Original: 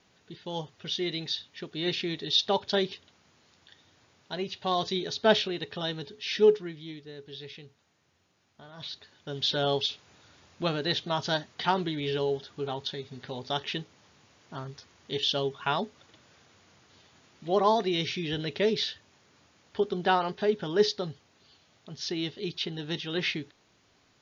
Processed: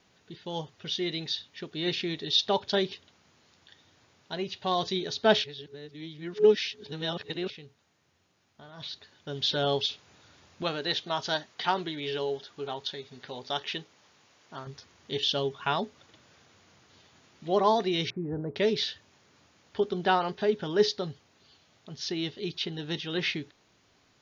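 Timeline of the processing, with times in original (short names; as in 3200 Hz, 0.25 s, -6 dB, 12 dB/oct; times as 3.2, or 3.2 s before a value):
5.44–7.5 reverse
10.63–14.67 low shelf 240 Hz -10.5 dB
18.1–18.56 inverse Chebyshev low-pass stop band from 2900 Hz, stop band 50 dB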